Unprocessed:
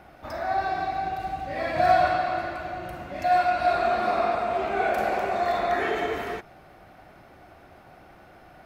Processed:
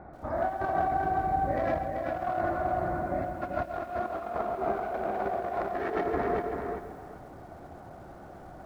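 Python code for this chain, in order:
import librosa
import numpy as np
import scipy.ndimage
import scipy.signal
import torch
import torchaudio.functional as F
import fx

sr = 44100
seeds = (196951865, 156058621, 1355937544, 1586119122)

p1 = fx.wiener(x, sr, points=15)
p2 = scipy.signal.sosfilt(scipy.signal.butter(2, 4500.0, 'lowpass', fs=sr, output='sos'), p1)
p3 = fx.high_shelf(p2, sr, hz=2100.0, db=-9.5)
p4 = fx.over_compress(p3, sr, threshold_db=-31.0, ratio=-0.5)
p5 = p4 + fx.echo_feedback(p4, sr, ms=387, feedback_pct=19, wet_db=-5, dry=0)
y = fx.echo_crushed(p5, sr, ms=134, feedback_pct=35, bits=9, wet_db=-11)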